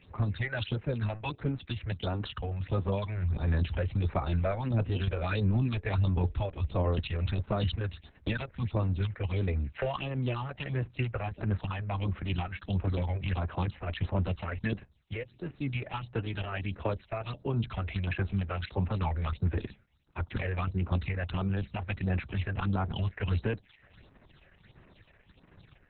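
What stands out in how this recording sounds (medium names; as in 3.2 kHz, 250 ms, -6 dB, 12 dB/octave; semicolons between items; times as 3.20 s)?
a quantiser's noise floor 12-bit, dither triangular; phasing stages 6, 1.5 Hz, lowest notch 240–4000 Hz; Opus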